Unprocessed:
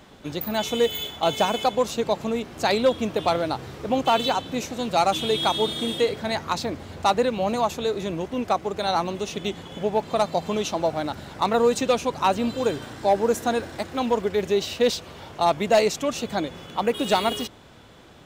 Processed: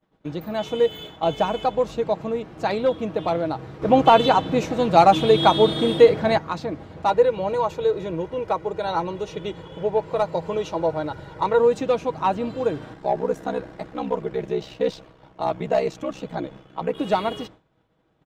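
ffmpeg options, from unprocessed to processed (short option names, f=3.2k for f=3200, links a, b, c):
-filter_complex "[0:a]asettb=1/sr,asplit=3[a][b][c];[a]atrim=end=1.234[d];[b]atrim=start=1.23:end=2.02,asetpts=PTS-STARTPTS,afade=t=in:d=0.004:c=qsin,afade=t=out:st=0.786:d=0.004:c=qsin,aeval=exprs='val(0)+0.00562*(sin(2*PI*50*n/s)+sin(2*PI*2*50*n/s)/2+sin(2*PI*3*50*n/s)/3+sin(2*PI*4*50*n/s)/4+sin(2*PI*5*50*n/s)/5)':c=same[e];[c]atrim=start=2.016[f];[d][e]acrossfade=d=0.004:c1=hsin:c2=qsin[g];[g][f]acrossfade=d=0.004:c1=qsin:c2=hsin,asettb=1/sr,asplit=3[h][i][j];[h]atrim=end=7.084[k];[i]atrim=start=7.08:end=11.6,asetpts=PTS-STARTPTS,afade=t=in:d=0.004:c=qsin,afade=t=out:st=4.516:d=0.004:c=qsin,aecho=1:1:2.1:0.62,atrim=end_sample=199332[l];[j]atrim=start=11.596[m];[k][l]acrossfade=d=0.004:c1=hsin:c2=qsin[n];[n][m]acrossfade=d=0.004:c1=qsin:c2=hsin,asettb=1/sr,asplit=3[o][p][q];[o]atrim=end=12.934[r];[p]atrim=start=12.93:end=16.98,asetpts=PTS-STARTPTS,afade=t=in:d=0.004:c=qsin,afade=t=out:st=4.046:d=0.004:c=qsin,aeval=exprs='val(0)*sin(2*PI*32*n/s)':c=same[s];[q]atrim=start=16.976[t];[r][s]acrossfade=d=0.004:c1=hsin:c2=qsin[u];[u][t]acrossfade=d=0.004:c1=qsin:c2=hsin,asplit=3[v][w][x];[v]atrim=end=3.822[y];[w]atrim=start=3.818:end=6.382,asetpts=PTS-STARTPTS,volume=8dB[z];[x]atrim=start=6.378[aa];[y][z]acrossfade=d=0.004:c1=hsin:c2=hsin[ab];[ab][aa]acrossfade=d=0.004:c1=hsin:c2=hsin,lowpass=f=1.3k:p=1,aecho=1:1:6.3:0.4,agate=range=-33dB:threshold=-38dB:ratio=3:detection=peak"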